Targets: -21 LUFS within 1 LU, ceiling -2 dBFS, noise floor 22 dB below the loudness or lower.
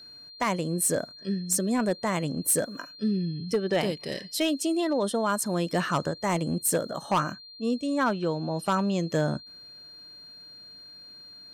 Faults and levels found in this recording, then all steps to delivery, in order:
clipped 0.5%; flat tops at -18.0 dBFS; steady tone 4200 Hz; tone level -45 dBFS; loudness -27.5 LUFS; peak -18.0 dBFS; loudness target -21.0 LUFS
-> clip repair -18 dBFS; notch 4200 Hz, Q 30; gain +6.5 dB

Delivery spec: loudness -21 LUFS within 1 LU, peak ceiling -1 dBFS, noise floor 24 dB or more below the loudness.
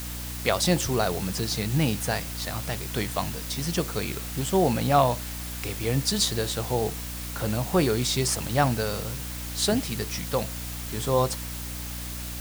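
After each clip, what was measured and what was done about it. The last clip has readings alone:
hum 60 Hz; harmonics up to 300 Hz; hum level -34 dBFS; noise floor -35 dBFS; noise floor target -51 dBFS; loudness -26.5 LUFS; peak -6.0 dBFS; loudness target -21.0 LUFS
-> notches 60/120/180/240/300 Hz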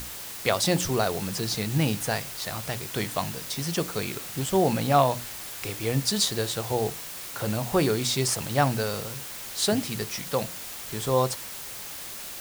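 hum none; noise floor -38 dBFS; noise floor target -51 dBFS
-> denoiser 13 dB, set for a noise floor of -38 dBFS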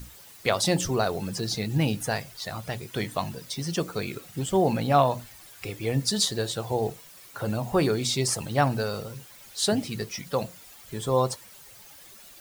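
noise floor -49 dBFS; noise floor target -52 dBFS
-> denoiser 6 dB, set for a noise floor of -49 dBFS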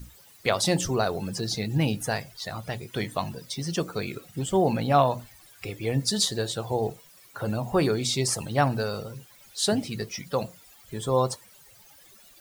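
noise floor -54 dBFS; loudness -27.5 LUFS; peak -6.5 dBFS; loudness target -21.0 LUFS
-> gain +6.5 dB; limiter -1 dBFS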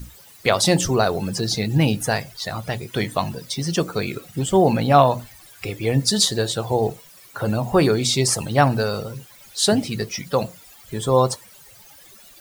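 loudness -21.0 LUFS; peak -1.0 dBFS; noise floor -47 dBFS

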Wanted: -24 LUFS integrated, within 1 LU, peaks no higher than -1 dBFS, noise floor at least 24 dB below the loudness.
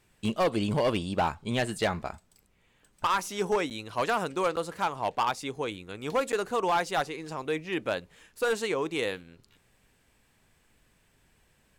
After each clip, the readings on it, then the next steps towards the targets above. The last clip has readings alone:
clipped 1.2%; flat tops at -20.0 dBFS; dropouts 3; longest dropout 8.4 ms; loudness -30.0 LUFS; peak -20.0 dBFS; loudness target -24.0 LUFS
-> clip repair -20 dBFS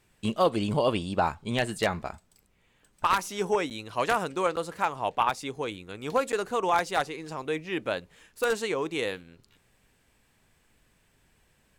clipped 0.0%; dropouts 3; longest dropout 8.4 ms
-> interpolate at 3.7/4.56/6.32, 8.4 ms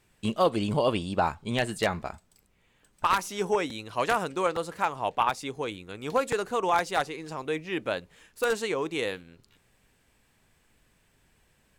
dropouts 0; loudness -29.0 LUFS; peak -11.0 dBFS; loudness target -24.0 LUFS
-> gain +5 dB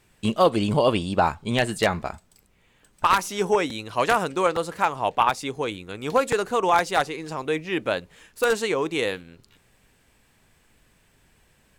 loudness -24.0 LUFS; peak -6.0 dBFS; noise floor -62 dBFS

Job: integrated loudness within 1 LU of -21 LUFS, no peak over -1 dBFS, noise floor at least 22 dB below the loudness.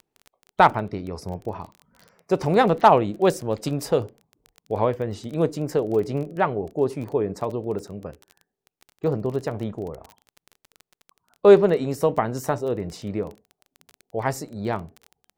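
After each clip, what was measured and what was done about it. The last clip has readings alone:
ticks 19/s; loudness -23.5 LUFS; peak -3.5 dBFS; loudness target -21.0 LUFS
-> de-click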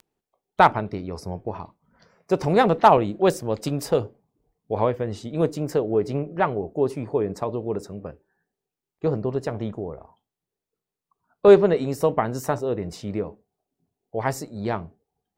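ticks 0.065/s; loudness -23.0 LUFS; peak -3.5 dBFS; loudness target -21.0 LUFS
-> gain +2 dB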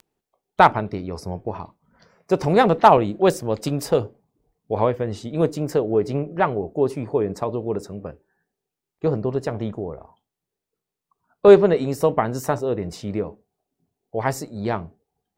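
loudness -21.0 LUFS; peak -1.5 dBFS; noise floor -86 dBFS

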